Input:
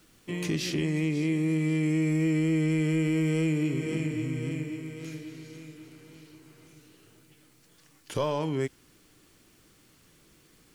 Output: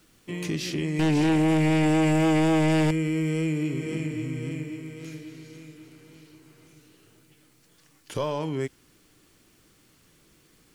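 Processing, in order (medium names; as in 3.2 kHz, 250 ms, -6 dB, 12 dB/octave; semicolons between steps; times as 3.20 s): 0.99–2.91 s: sine folder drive 6 dB, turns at -18 dBFS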